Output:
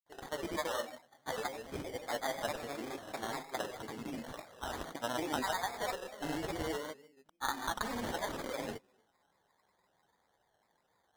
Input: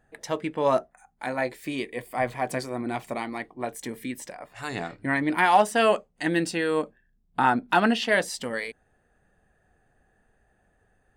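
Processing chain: frequency weighting A; on a send at -3 dB: reverberation RT60 0.50 s, pre-delay 6 ms; on the sum: sample-and-hold 17×; compression 6:1, threshold -26 dBFS, peak gain reduction 12.5 dB; granulator, grains 20 per s, pitch spread up and down by 3 st; trim -5 dB

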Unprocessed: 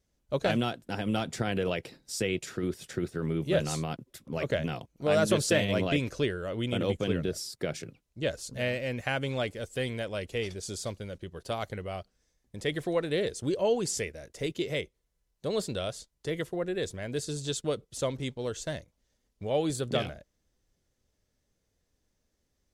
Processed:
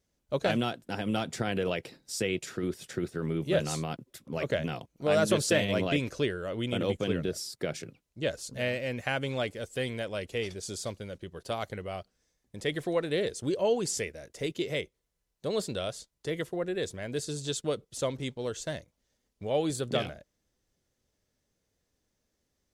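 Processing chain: bass shelf 65 Hz -8.5 dB

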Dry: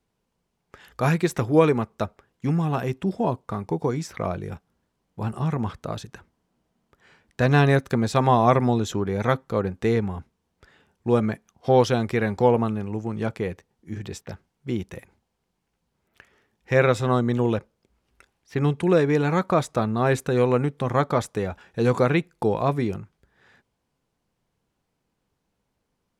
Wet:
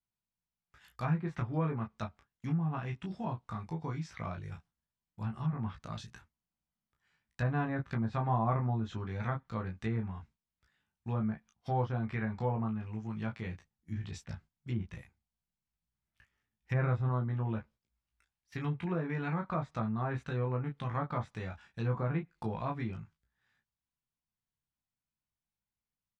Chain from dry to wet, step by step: peaking EQ 440 Hz -14 dB 1.5 oct; gate -51 dBFS, range -11 dB; 13.46–17.09 s: bass shelf 280 Hz +5 dB; early reflections 18 ms -4 dB, 32 ms -7 dB; low-pass that closes with the level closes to 1.1 kHz, closed at -20 dBFS; trim -8.5 dB

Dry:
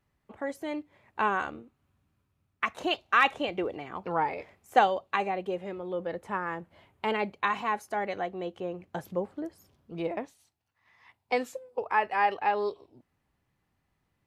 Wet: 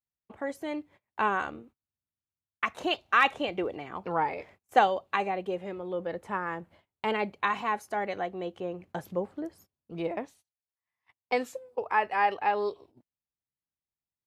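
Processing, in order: gate -54 dBFS, range -27 dB

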